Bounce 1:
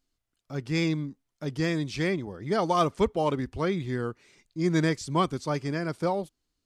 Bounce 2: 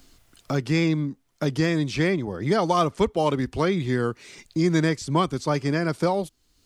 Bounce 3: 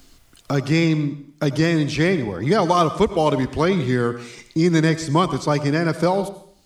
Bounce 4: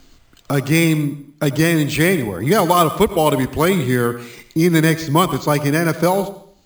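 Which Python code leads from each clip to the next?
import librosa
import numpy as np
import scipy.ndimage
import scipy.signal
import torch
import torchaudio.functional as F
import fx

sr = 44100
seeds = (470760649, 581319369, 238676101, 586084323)

y1 = fx.band_squash(x, sr, depth_pct=70)
y1 = y1 * 10.0 ** (4.0 / 20.0)
y2 = fx.rev_plate(y1, sr, seeds[0], rt60_s=0.58, hf_ratio=1.0, predelay_ms=75, drr_db=12.5)
y2 = y2 * 10.0 ** (4.0 / 20.0)
y3 = fx.dynamic_eq(y2, sr, hz=2800.0, q=0.78, threshold_db=-33.0, ratio=4.0, max_db=4)
y3 = np.repeat(scipy.signal.resample_poly(y3, 1, 4), 4)[:len(y3)]
y3 = y3 * 10.0 ** (2.5 / 20.0)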